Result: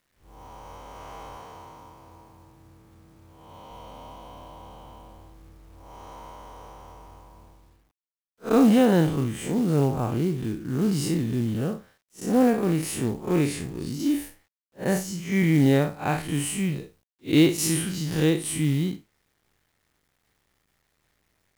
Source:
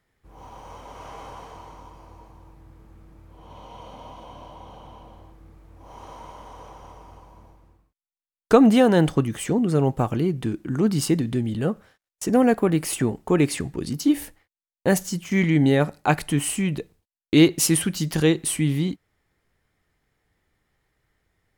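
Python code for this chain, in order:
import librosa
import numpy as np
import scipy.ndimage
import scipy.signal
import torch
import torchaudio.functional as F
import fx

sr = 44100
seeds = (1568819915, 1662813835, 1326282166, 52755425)

y = fx.spec_blur(x, sr, span_ms=109.0)
y = fx.highpass(y, sr, hz=69.0, slope=24, at=(1.37, 3.7))
y = fx.quant_companded(y, sr, bits=6)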